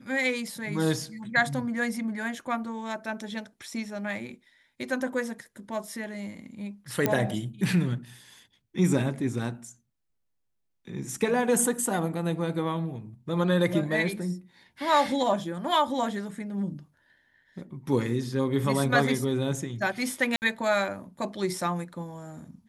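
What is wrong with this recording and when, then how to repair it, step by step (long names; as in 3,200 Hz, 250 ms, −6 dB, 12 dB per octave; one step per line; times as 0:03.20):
0:07.06: click −9 dBFS
0:20.36–0:20.42: drop-out 59 ms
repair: click removal
repair the gap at 0:20.36, 59 ms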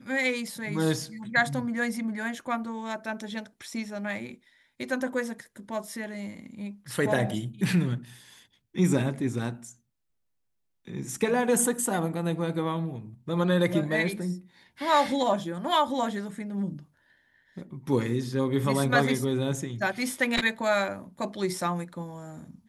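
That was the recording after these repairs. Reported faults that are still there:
none of them is left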